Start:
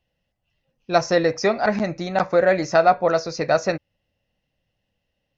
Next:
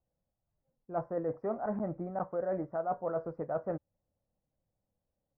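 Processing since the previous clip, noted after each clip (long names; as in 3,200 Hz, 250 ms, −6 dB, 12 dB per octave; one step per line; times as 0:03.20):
inverse Chebyshev low-pass filter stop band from 3,100 Hz, stop band 50 dB
reversed playback
downward compressor 6 to 1, threshold −22 dBFS, peak gain reduction 11.5 dB
reversed playback
level −8.5 dB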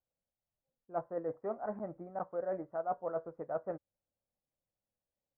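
bass and treble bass −6 dB, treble −8 dB
expander for the loud parts 1.5 to 1, over −42 dBFS
level −1 dB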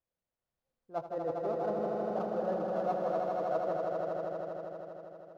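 running median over 15 samples
on a send: echo that builds up and dies away 80 ms, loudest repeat 5, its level −5 dB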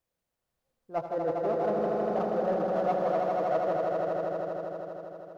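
in parallel at −4 dB: soft clipping −32.5 dBFS, distortion −12 dB
on the sum: convolution reverb RT60 0.35 s, pre-delay 93 ms, DRR 13.5 dB
level +2 dB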